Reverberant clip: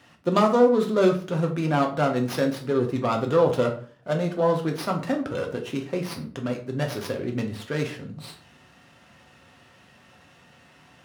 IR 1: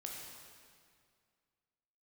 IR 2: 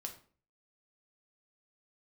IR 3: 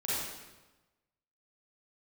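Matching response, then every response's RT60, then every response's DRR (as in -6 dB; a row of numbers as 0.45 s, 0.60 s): 2; 2.1 s, 0.45 s, 1.1 s; -1.5 dB, 2.0 dB, -9.5 dB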